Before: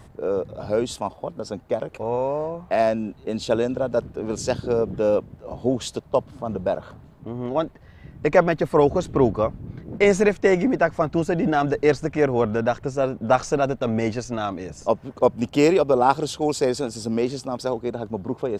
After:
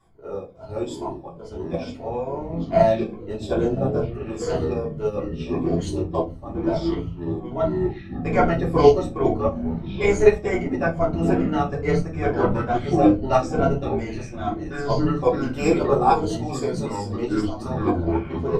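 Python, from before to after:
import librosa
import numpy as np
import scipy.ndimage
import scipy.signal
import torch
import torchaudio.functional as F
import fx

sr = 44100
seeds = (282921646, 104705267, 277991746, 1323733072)

y = fx.spec_ripple(x, sr, per_octave=1.8, drift_hz=-2.3, depth_db=12)
y = fx.low_shelf(y, sr, hz=210.0, db=8.0, at=(2.07, 4.43))
y = fx.echo_pitch(y, sr, ms=555, semitones=-6, count=3, db_per_echo=-3.0)
y = fx.room_shoebox(y, sr, seeds[0], volume_m3=130.0, walls='furnished', distance_m=3.2)
y = fx.upward_expand(y, sr, threshold_db=-27.0, expansion=1.5)
y = F.gain(torch.from_numpy(y), -8.0).numpy()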